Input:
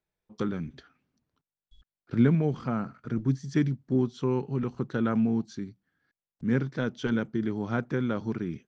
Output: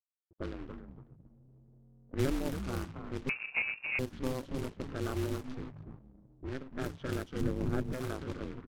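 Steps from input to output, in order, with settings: level-crossing sampler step -45.5 dBFS; frequency-shifting echo 0.282 s, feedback 36%, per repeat -100 Hz, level -6.5 dB; 5.35–6.74 compressor 5:1, threshold -27 dBFS, peak gain reduction 7.5 dB; companded quantiser 4-bit; 7.41–7.93 tilt -2.5 dB/oct; low-pass opened by the level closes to 370 Hz, open at -21.5 dBFS; 3.29–3.99 inverted band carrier 2600 Hz; ring modulator 130 Hz; gain -6.5 dB

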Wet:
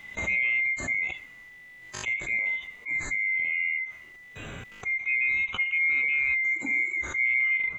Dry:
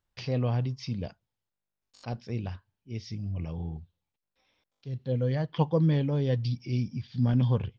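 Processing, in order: band-swap scrambler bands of 2000 Hz; high shelf 4300 Hz -12 dB; harmonic-percussive split percussive -17 dB; low shelf 200 Hz +11.5 dB; fast leveller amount 70%

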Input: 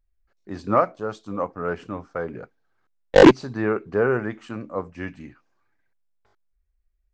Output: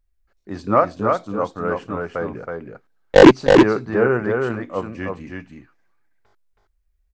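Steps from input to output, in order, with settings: echo 0.322 s -4 dB; gain +3 dB

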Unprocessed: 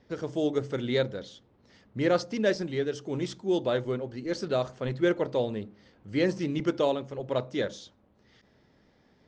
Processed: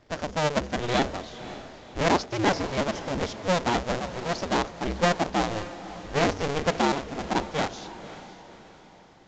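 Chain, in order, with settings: cycle switcher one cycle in 2, inverted; diffused feedback echo 0.538 s, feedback 44%, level -14 dB; gain +2 dB; µ-law 128 kbps 16000 Hz

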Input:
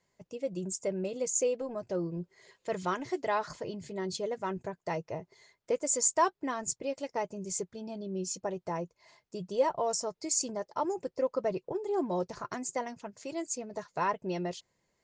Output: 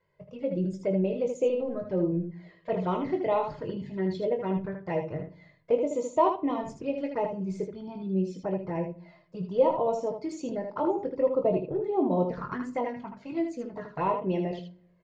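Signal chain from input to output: envelope flanger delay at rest 2 ms, full sweep at -29 dBFS; air absorption 380 m; early reflections 21 ms -7 dB, 78 ms -6 dB; reverb RT60 0.55 s, pre-delay 6 ms, DRR 12.5 dB; gain +6.5 dB

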